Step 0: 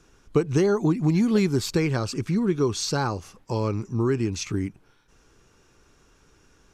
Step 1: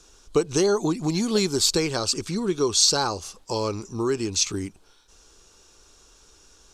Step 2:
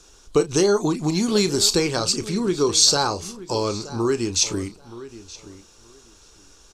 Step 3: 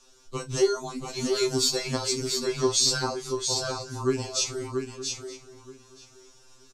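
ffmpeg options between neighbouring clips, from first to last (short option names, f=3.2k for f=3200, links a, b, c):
-af "equalizer=f=125:t=o:w=1:g=-12,equalizer=f=250:t=o:w=1:g=-5,equalizer=f=2k:t=o:w=1:g=-7,equalizer=f=4k:t=o:w=1:g=7,equalizer=f=8k:t=o:w=1:g=8,volume=3.5dB"
-filter_complex "[0:a]asplit=2[a][b];[b]adelay=34,volume=-12dB[c];[a][c]amix=inputs=2:normalize=0,asplit=2[d][e];[e]adelay=924,lowpass=f=3.7k:p=1,volume=-16dB,asplit=2[f][g];[g]adelay=924,lowpass=f=3.7k:p=1,volume=0.18[h];[d][f][h]amix=inputs=3:normalize=0,volume=2.5dB"
-af "aecho=1:1:684:0.531,afftfilt=real='re*2.45*eq(mod(b,6),0)':imag='im*2.45*eq(mod(b,6),0)':win_size=2048:overlap=0.75,volume=-4dB"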